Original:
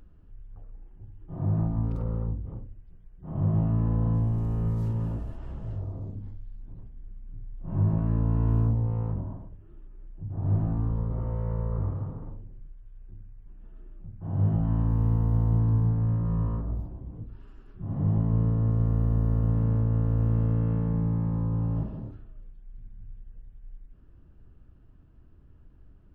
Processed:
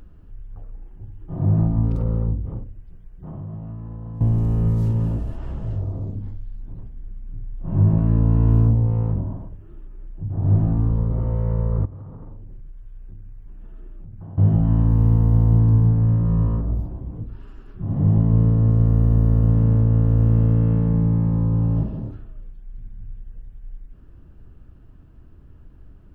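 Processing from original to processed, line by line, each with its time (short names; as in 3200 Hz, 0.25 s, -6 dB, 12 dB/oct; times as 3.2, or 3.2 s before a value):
2.63–4.21 compressor, threshold -39 dBFS
11.85–14.38 compressor 12:1, threshold -41 dBFS
whole clip: dynamic EQ 1200 Hz, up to -5 dB, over -51 dBFS, Q 0.79; gain +8 dB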